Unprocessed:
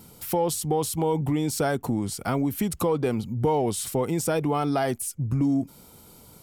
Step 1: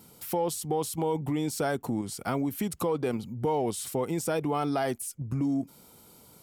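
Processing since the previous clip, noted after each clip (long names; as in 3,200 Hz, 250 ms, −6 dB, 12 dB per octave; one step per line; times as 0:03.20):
low-shelf EQ 79 Hz −12 dB
in parallel at −1.5 dB: output level in coarse steps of 14 dB
on the sum: level −7 dB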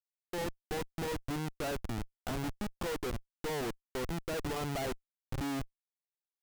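bass and treble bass −7 dB, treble −12 dB
comparator with hysteresis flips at −30 dBFS
level −2.5 dB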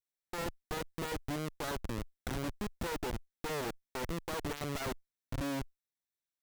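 lower of the sound and its delayed copy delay 0.52 ms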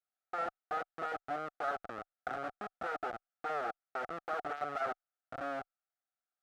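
pair of resonant band-passes 980 Hz, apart 0.81 octaves
level +11 dB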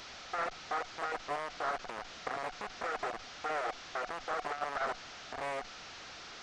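linear delta modulator 32 kbit/s, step −43 dBFS
highs frequency-modulated by the lows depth 0.49 ms
level +1.5 dB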